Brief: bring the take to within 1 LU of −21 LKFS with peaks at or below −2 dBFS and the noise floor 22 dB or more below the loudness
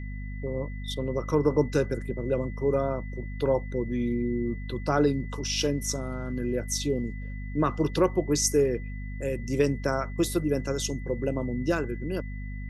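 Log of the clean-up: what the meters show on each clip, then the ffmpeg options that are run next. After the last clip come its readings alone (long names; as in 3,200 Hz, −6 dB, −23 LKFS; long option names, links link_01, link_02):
mains hum 50 Hz; hum harmonics up to 250 Hz; level of the hum −33 dBFS; interfering tone 2,000 Hz; level of the tone −47 dBFS; integrated loudness −28.5 LKFS; sample peak −10.0 dBFS; target loudness −21.0 LKFS
→ -af "bandreject=frequency=50:width_type=h:width=4,bandreject=frequency=100:width_type=h:width=4,bandreject=frequency=150:width_type=h:width=4,bandreject=frequency=200:width_type=h:width=4,bandreject=frequency=250:width_type=h:width=4"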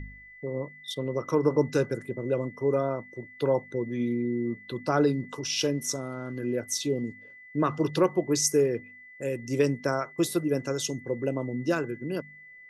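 mains hum none found; interfering tone 2,000 Hz; level of the tone −47 dBFS
→ -af "bandreject=frequency=2000:width=30"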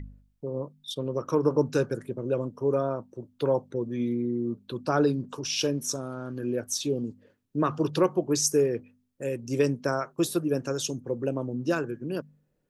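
interfering tone none found; integrated loudness −28.5 LKFS; sample peak −10.5 dBFS; target loudness −21.0 LKFS
→ -af "volume=7.5dB"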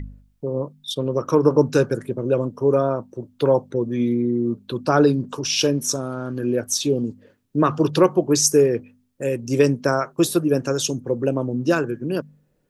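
integrated loudness −21.0 LKFS; sample peak −3.0 dBFS; background noise floor −65 dBFS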